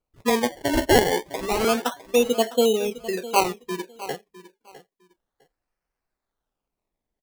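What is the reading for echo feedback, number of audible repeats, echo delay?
19%, 2, 656 ms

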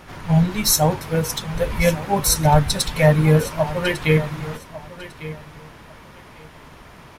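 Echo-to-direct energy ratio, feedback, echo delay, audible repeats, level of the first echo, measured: −15.5 dB, 20%, 1,150 ms, 2, −15.5 dB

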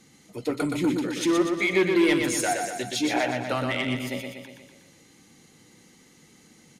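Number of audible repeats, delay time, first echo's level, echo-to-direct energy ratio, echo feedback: 6, 121 ms, −5.0 dB, −3.5 dB, 56%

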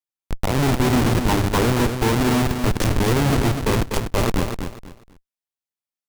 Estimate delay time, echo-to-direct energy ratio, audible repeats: 246 ms, −6.5 dB, 3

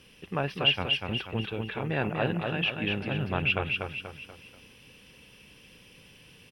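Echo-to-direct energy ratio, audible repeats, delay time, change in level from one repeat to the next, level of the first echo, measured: −3.0 dB, 4, 241 ms, −7.5 dB, −4.0 dB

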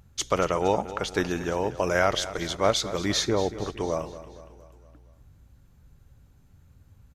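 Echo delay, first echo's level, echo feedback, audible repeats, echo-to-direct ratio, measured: 232 ms, −14.5 dB, 53%, 4, −13.0 dB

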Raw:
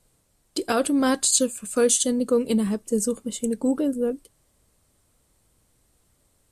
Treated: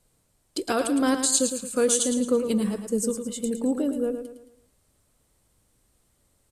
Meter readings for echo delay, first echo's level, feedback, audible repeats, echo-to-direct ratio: 110 ms, −8.0 dB, 41%, 4, −7.0 dB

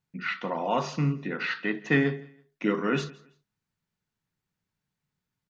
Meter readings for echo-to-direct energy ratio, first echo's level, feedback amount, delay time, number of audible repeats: −21.5 dB, −22.0 dB, 26%, 165 ms, 2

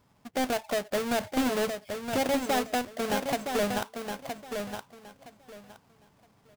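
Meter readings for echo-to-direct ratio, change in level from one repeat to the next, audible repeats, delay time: −6.5 dB, −13.5 dB, 3, 967 ms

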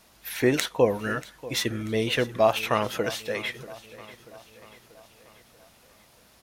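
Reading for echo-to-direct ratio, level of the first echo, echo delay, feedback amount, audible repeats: −16.5 dB, −18.0 dB, 637 ms, 54%, 4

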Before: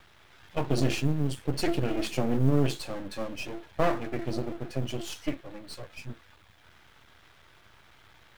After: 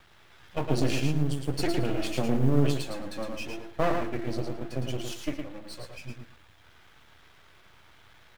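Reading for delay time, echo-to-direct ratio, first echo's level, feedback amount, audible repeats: 111 ms, −5.0 dB, −5.0 dB, 17%, 2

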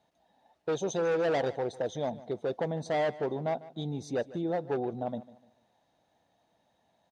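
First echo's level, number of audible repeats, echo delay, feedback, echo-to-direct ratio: −18.0 dB, 2, 149 ms, 33%, −17.5 dB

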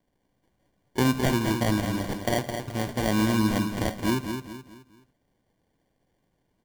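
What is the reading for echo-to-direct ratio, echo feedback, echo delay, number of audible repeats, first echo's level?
−6.5 dB, 38%, 213 ms, 4, −7.0 dB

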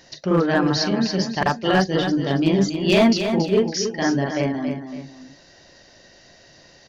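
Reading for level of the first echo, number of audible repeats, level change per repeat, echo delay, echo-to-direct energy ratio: −8.0 dB, 2, −9.0 dB, 278 ms, −7.5 dB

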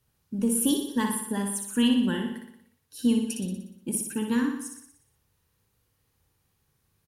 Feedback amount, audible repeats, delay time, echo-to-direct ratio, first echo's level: 57%, 7, 60 ms, −3.5 dB, −5.0 dB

